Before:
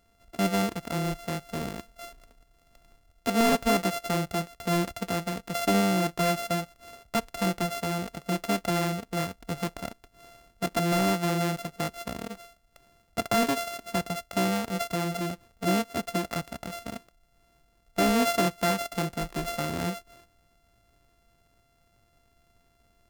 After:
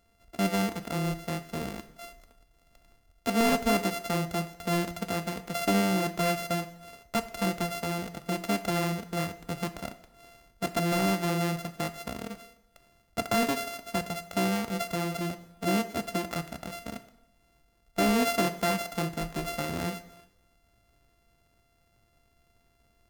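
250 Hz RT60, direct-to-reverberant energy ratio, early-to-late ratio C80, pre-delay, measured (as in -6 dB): 0.85 s, 11.0 dB, 16.5 dB, 4 ms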